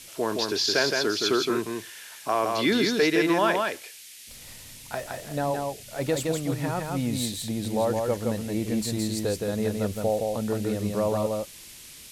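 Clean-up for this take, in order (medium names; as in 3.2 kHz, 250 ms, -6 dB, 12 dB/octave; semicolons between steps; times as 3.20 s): noise print and reduce 27 dB; inverse comb 167 ms -3.5 dB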